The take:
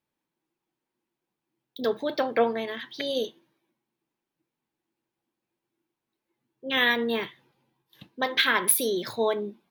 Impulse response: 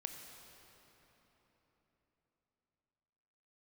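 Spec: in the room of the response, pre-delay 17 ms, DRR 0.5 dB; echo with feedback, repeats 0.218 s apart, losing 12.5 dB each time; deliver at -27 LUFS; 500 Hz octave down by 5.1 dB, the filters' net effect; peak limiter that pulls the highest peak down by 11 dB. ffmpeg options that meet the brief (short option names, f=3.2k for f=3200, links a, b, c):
-filter_complex "[0:a]equalizer=f=500:t=o:g=-6,alimiter=limit=-17dB:level=0:latency=1,aecho=1:1:218|436|654:0.237|0.0569|0.0137,asplit=2[a][b];[1:a]atrim=start_sample=2205,adelay=17[c];[b][c]afir=irnorm=-1:irlink=0,volume=2dB[d];[a][d]amix=inputs=2:normalize=0,volume=0.5dB"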